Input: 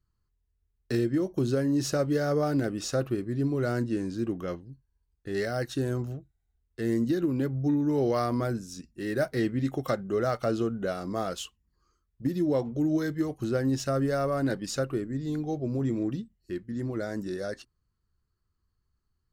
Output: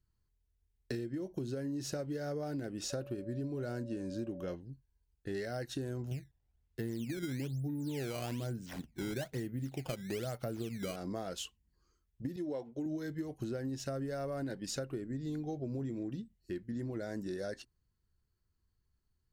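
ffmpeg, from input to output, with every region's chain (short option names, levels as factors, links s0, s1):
-filter_complex "[0:a]asettb=1/sr,asplit=3[s0][s1][s2];[s0]atrim=end=2.904[s3];[s1]atrim=start=2.9:end=4.54,asetpts=PTS-STARTPTS,afade=t=in:d=0.004:c=qsin,afade=t=out:st=1.636:d=0.004:c=qsin,bandreject=f=2000:w=9.6,aeval=exprs='val(0)+0.01*sin(2*PI*570*n/s)':c=same[s4];[s2]atrim=start=4.536[s5];[s3][s4]acrossfade=d=0.004:c1=hsin:c2=qsin[s6];[s6][s5]acrossfade=d=0.004:c1=qsin:c2=hsin,asettb=1/sr,asplit=3[s7][s8][s9];[s7]atrim=end=6.114[s10];[s8]atrim=start=6.11:end=10.96,asetpts=PTS-STARTPTS,afade=t=in:d=0.004:c=qsin,afade=t=out:st=4.846:d=0.004:c=qsin,equalizer=f=130:w=1.1:g=6.5,acrusher=samples=14:mix=1:aa=0.000001:lfo=1:lforange=22.4:lforate=1.1[s11];[s9]atrim=start=10.956[s12];[s10][s11]acrossfade=d=0.004:c1=hsin:c2=qsin[s13];[s13][s12]acrossfade=d=0.004:c1=qsin:c2=hsin,asettb=1/sr,asplit=3[s14][s15][s16];[s14]atrim=end=12.364[s17];[s15]atrim=start=12.36:end=12.86,asetpts=PTS-STARTPTS,afade=t=in:d=0.004:c=qsin,afade=t=out:st=0.496:d=0.004:c=qsin,agate=range=0.0224:threshold=0.0282:ratio=3:release=100:detection=peak,lowpass=f=12000:w=0.5412,lowpass=f=12000:w=1.3066,bass=f=250:g=-10,treble=f=4000:g=-2[s18];[s16]atrim=start=12.856[s19];[s17][s18]acrossfade=d=0.004:c1=hsin:c2=qsin[s20];[s20][s19]acrossfade=d=0.004:c1=qsin:c2=hsin,equalizer=f=1200:w=5.4:g=-9,acompressor=threshold=0.0224:ratio=10,volume=0.794"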